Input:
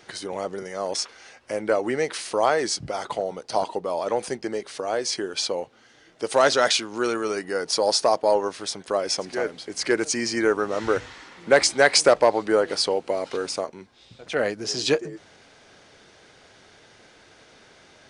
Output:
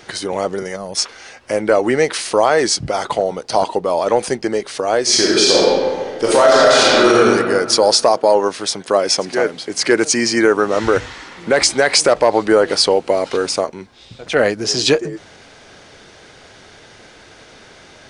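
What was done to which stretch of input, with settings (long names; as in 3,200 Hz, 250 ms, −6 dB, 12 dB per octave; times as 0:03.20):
0:00.76–0:00.97: gain on a spectral selection 230–9,200 Hz −11 dB
0:05.02–0:07.16: thrown reverb, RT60 1.8 s, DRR −6.5 dB
0:08.11–0:10.77: high-pass filter 110 Hz
whole clip: low-shelf EQ 65 Hz +6 dB; boost into a limiter +10.5 dB; level −1 dB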